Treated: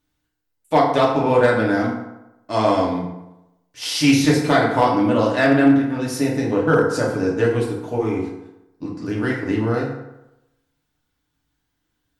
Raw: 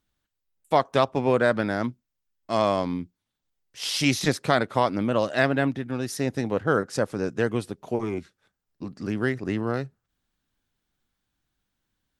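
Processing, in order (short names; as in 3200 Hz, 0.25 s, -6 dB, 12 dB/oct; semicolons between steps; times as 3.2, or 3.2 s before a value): FDN reverb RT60 0.92 s, low-frequency decay 0.9×, high-frequency decay 0.6×, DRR -4 dB; hard clip -6.5 dBFS, distortion -28 dB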